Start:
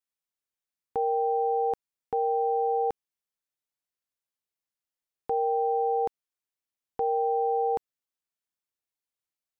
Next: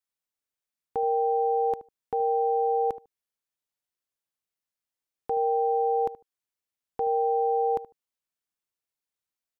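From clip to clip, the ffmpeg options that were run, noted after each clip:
ffmpeg -i in.wav -filter_complex "[0:a]asplit=2[link_01][link_02];[link_02]adelay=75,lowpass=frequency=1000:poles=1,volume=-14dB,asplit=2[link_03][link_04];[link_04]adelay=75,lowpass=frequency=1000:poles=1,volume=0.18[link_05];[link_01][link_03][link_05]amix=inputs=3:normalize=0" out.wav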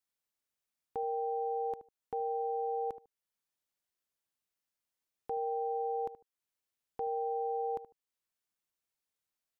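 ffmpeg -i in.wav -af "alimiter=level_in=4.5dB:limit=-24dB:level=0:latency=1:release=485,volume=-4.5dB" out.wav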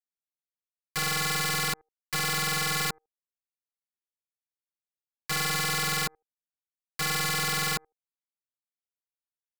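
ffmpeg -i in.wav -af "aeval=exprs='(mod(33.5*val(0)+1,2)-1)/33.5':channel_layout=same,aeval=exprs='0.0299*(cos(1*acos(clip(val(0)/0.0299,-1,1)))-cos(1*PI/2))+0.00376*(cos(2*acos(clip(val(0)/0.0299,-1,1)))-cos(2*PI/2))+0.00944*(cos(3*acos(clip(val(0)/0.0299,-1,1)))-cos(3*PI/2))':channel_layout=same,volume=8dB" out.wav

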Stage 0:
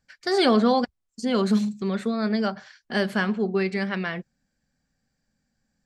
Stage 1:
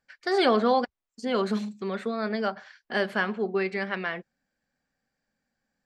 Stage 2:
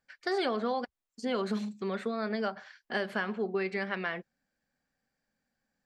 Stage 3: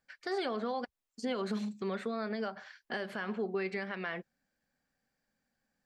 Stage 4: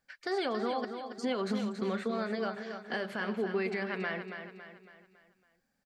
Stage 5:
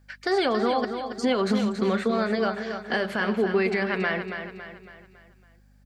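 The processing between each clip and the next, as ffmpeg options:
ffmpeg -i in.wav -af "bass=frequency=250:gain=-12,treble=frequency=4000:gain=-9" out.wav
ffmpeg -i in.wav -af "acompressor=threshold=-25dB:ratio=6,volume=-2dB" out.wav
ffmpeg -i in.wav -af "alimiter=level_in=1.5dB:limit=-24dB:level=0:latency=1:release=152,volume=-1.5dB" out.wav
ffmpeg -i in.wav -af "aecho=1:1:278|556|834|1112|1390:0.398|0.179|0.0806|0.0363|0.0163,volume=2dB" out.wav
ffmpeg -i in.wav -af "aeval=exprs='val(0)+0.000562*(sin(2*PI*50*n/s)+sin(2*PI*2*50*n/s)/2+sin(2*PI*3*50*n/s)/3+sin(2*PI*4*50*n/s)/4+sin(2*PI*5*50*n/s)/5)':channel_layout=same,volume=9dB" out.wav

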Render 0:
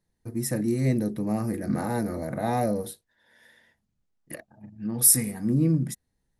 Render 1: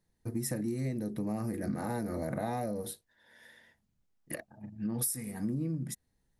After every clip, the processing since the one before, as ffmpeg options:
ffmpeg -i in.wav -af "acompressor=threshold=-30dB:ratio=16" out.wav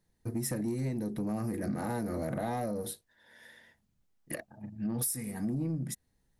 ffmpeg -i in.wav -af "asoftclip=type=tanh:threshold=-26.5dB,volume=2dB" out.wav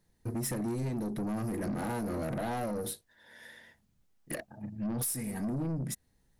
ffmpeg -i in.wav -af "aeval=exprs='(tanh(44.7*val(0)+0.1)-tanh(0.1))/44.7':channel_layout=same,volume=3.5dB" out.wav

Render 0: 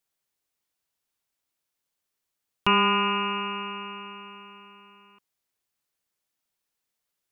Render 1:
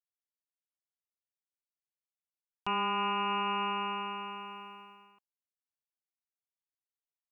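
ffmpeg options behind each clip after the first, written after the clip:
ffmpeg -i in.wav -af "agate=range=-33dB:threshold=-48dB:ratio=3:detection=peak,equalizer=frequency=760:width=2.5:gain=12.5,areverse,acompressor=threshold=-28dB:ratio=16,areverse" out.wav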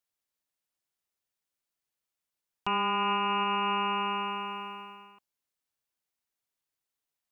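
ffmpeg -i in.wav -af "alimiter=level_in=3dB:limit=-24dB:level=0:latency=1:release=290,volume=-3dB,volume=7.5dB" out.wav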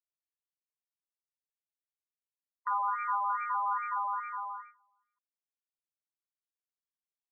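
ffmpeg -i in.wav -af "acrusher=bits=4:mode=log:mix=0:aa=0.000001,agate=range=-25dB:threshold=-37dB:ratio=16:detection=peak,afftfilt=real='re*between(b*sr/1024,840*pow(1700/840,0.5+0.5*sin(2*PI*2.4*pts/sr))/1.41,840*pow(1700/840,0.5+0.5*sin(2*PI*2.4*pts/sr))*1.41)':imag='im*between(b*sr/1024,840*pow(1700/840,0.5+0.5*sin(2*PI*2.4*pts/sr))/1.41,840*pow(1700/840,0.5+0.5*sin(2*PI*2.4*pts/sr))*1.41)':win_size=1024:overlap=0.75" out.wav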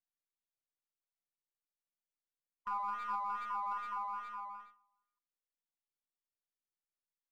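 ffmpeg -i in.wav -filter_complex "[0:a]aeval=exprs='0.0841*(cos(1*acos(clip(val(0)/0.0841,-1,1)))-cos(1*PI/2))+0.00596*(cos(3*acos(clip(val(0)/0.0841,-1,1)))-cos(3*PI/2))+0.00237*(cos(5*acos(clip(val(0)/0.0841,-1,1)))-cos(5*PI/2))+0.000596*(cos(8*acos(clip(val(0)/0.0841,-1,1)))-cos(8*PI/2))':channel_layout=same,acrossover=split=1100|1200[link_01][link_02][link_03];[link_01]aecho=1:1:73|146|219:0.266|0.0798|0.0239[link_04];[link_03]aeval=exprs='max(val(0),0)':channel_layout=same[link_05];[link_04][link_02][link_05]amix=inputs=3:normalize=0,volume=-5dB" out.wav

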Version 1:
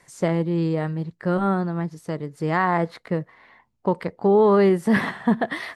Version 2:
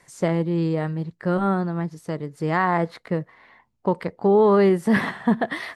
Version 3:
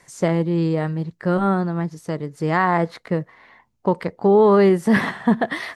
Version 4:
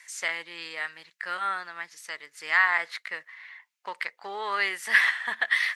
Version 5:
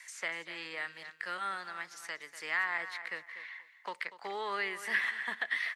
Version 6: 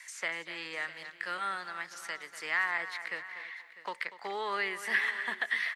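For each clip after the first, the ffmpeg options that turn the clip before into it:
ffmpeg -i in.wav -af anull out.wav
ffmpeg -i in.wav -af "equalizer=frequency=6200:width_type=o:width=0.52:gain=3,volume=2.5dB" out.wav
ffmpeg -i in.wav -af "highpass=frequency=2000:width_type=q:width=1.8,volume=1dB" out.wav
ffmpeg -i in.wav -filter_complex "[0:a]acrossover=split=350|1800|2300[link_01][link_02][link_03][link_04];[link_04]acompressor=threshold=-47dB:ratio=6[link_05];[link_01][link_02][link_03][link_05]amix=inputs=4:normalize=0,aecho=1:1:241|482:0.178|0.0356,acrossover=split=440|3000[link_06][link_07][link_08];[link_07]acompressor=threshold=-42dB:ratio=2[link_09];[link_06][link_09][link_08]amix=inputs=3:normalize=0" out.wav
ffmpeg -i in.wav -af "aecho=1:1:649:0.15,volume=2dB" out.wav

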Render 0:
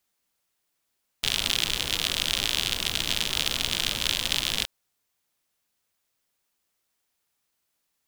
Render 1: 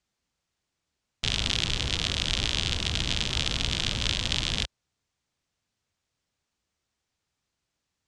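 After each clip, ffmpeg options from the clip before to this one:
ffmpeg -i in.wav -af "lowpass=frequency=7500:width=0.5412,lowpass=frequency=7500:width=1.3066,equalizer=frequency=71:width=0.4:gain=13,volume=-2dB" out.wav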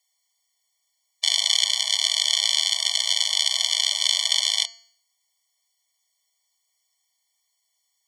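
ffmpeg -i in.wav -af "bandreject=frequency=227.8:width_type=h:width=4,bandreject=frequency=455.6:width_type=h:width=4,bandreject=frequency=683.4:width_type=h:width=4,bandreject=frequency=911.2:width_type=h:width=4,bandreject=frequency=1139:width_type=h:width=4,bandreject=frequency=1366.8:width_type=h:width=4,bandreject=frequency=1594.6:width_type=h:width=4,bandreject=frequency=1822.4:width_type=h:width=4,bandreject=frequency=2050.2:width_type=h:width=4,bandreject=frequency=2278:width_type=h:width=4,bandreject=frequency=2505.8:width_type=h:width=4,bandreject=frequency=2733.6:width_type=h:width=4,bandreject=frequency=2961.4:width_type=h:width=4,bandreject=frequency=3189.2:width_type=h:width=4,bandreject=frequency=3417:width_type=h:width=4,bandreject=frequency=3644.8:width_type=h:width=4,bandreject=frequency=3872.6:width_type=h:width=4,bandreject=frequency=4100.4:width_type=h:width=4,bandreject=frequency=4328.2:width_type=h:width=4,bandreject=frequency=4556:width_type=h:width=4,bandreject=frequency=4783.8:width_type=h:width=4,bandreject=frequency=5011.6:width_type=h:width=4,bandreject=frequency=5239.4:width_type=h:width=4,bandreject=frequency=5467.2:width_type=h:width=4,bandreject=frequency=5695:width_type=h:width=4,bandreject=frequency=5922.8:width_type=h:width=4,bandreject=frequency=6150.6:width_type=h:width=4,bandreject=frequency=6378.4:width_type=h:width=4,bandreject=frequency=6606.2:width_type=h:width=4,bandreject=frequency=6834:width_type=h:width=4,bandreject=frequency=7061.8:width_type=h:width=4,bandreject=frequency=7289.6:width_type=h:width=4,bandreject=frequency=7517.4:width_type=h:width=4,bandreject=frequency=7745.2:width_type=h:width=4,bandreject=frequency=7973:width_type=h:width=4,crystalizer=i=6.5:c=0,afftfilt=real='re*eq(mod(floor(b*sr/1024/590),2),1)':imag='im*eq(mod(floor(b*sr/1024/590),2),1)':win_size=1024:overlap=0.75,volume=-1dB" out.wav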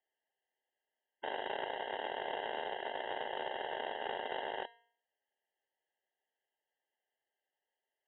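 ffmpeg -i in.wav -filter_complex "[0:a]acrossover=split=1600[link_01][link_02];[link_02]asoftclip=type=tanh:threshold=-19.5dB[link_03];[link_01][link_03]amix=inputs=2:normalize=0,lowpass=frequency=3300:width_type=q:width=0.5098,lowpass=frequency=3300:width_type=q:width=0.6013,lowpass=frequency=3300:width_type=q:width=0.9,lowpass=frequency=3300:width_type=q:width=2.563,afreqshift=-3900,volume=-7.5dB" out.wav

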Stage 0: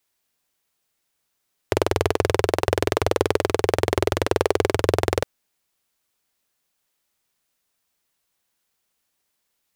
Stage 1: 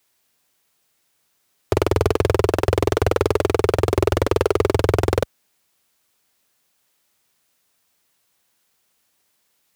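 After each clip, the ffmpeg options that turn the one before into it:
ffmpeg -i in.wav -af "highpass=57,asoftclip=type=hard:threshold=-16.5dB,volume=7.5dB" out.wav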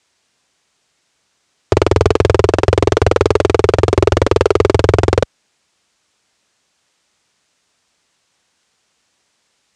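ffmpeg -i in.wav -af "lowpass=frequency=8000:width=0.5412,lowpass=frequency=8000:width=1.3066,volume=6.5dB" out.wav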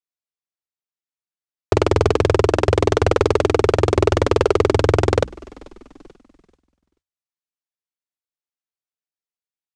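ffmpeg -i in.wav -filter_complex "[0:a]bandreject=frequency=60:width_type=h:width=6,bandreject=frequency=120:width_type=h:width=6,bandreject=frequency=180:width_type=h:width=6,bandreject=frequency=240:width_type=h:width=6,bandreject=frequency=300:width_type=h:width=6,asplit=5[link_01][link_02][link_03][link_04][link_05];[link_02]adelay=436,afreqshift=-38,volume=-24dB[link_06];[link_03]adelay=872,afreqshift=-76,volume=-28dB[link_07];[link_04]adelay=1308,afreqshift=-114,volume=-32dB[link_08];[link_05]adelay=1744,afreqshift=-152,volume=-36dB[link_09];[link_01][link_06][link_07][link_08][link_09]amix=inputs=5:normalize=0,agate=range=-33dB:threshold=-35dB:ratio=3:detection=peak,volume=-4dB" out.wav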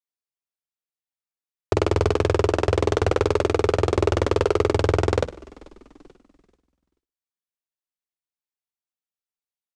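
ffmpeg -i in.wav -af "aecho=1:1:60|120|180:0.224|0.0537|0.0129,volume=-4.5dB" out.wav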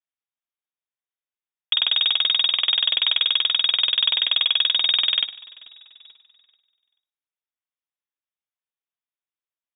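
ffmpeg -i in.wav -af "lowpass=frequency=3200:width_type=q:width=0.5098,lowpass=frequency=3200:width_type=q:width=0.6013,lowpass=frequency=3200:width_type=q:width=0.9,lowpass=frequency=3200:width_type=q:width=2.563,afreqshift=-3800" out.wav

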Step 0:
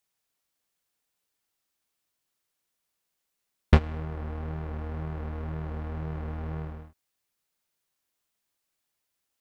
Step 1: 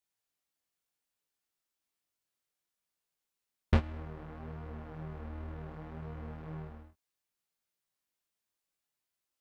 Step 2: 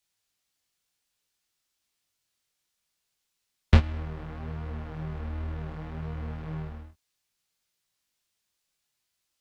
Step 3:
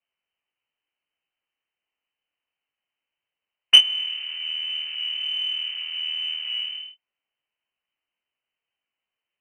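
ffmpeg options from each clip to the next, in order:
ffmpeg -i in.wav -af "flanger=delay=17:depth=5.4:speed=0.65,volume=-4dB" out.wav
ffmpeg -i in.wav -filter_complex "[0:a]equalizer=frequency=4600:width=0.45:gain=7.5,acrossover=split=170|1500[link_01][link_02][link_03];[link_01]acontrast=48[link_04];[link_04][link_02][link_03]amix=inputs=3:normalize=0,volume=3.5dB" out.wav
ffmpeg -i in.wav -af "lowpass=frequency=2600:width_type=q:width=0.5098,lowpass=frequency=2600:width_type=q:width=0.6013,lowpass=frequency=2600:width_type=q:width=0.9,lowpass=frequency=2600:width_type=q:width=2.563,afreqshift=-3100,aexciter=amount=3.1:drive=5.6:freq=2200,volume=-3.5dB" out.wav

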